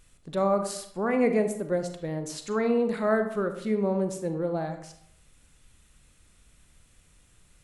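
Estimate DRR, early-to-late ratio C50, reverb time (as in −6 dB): 7.0 dB, 9.0 dB, 0.70 s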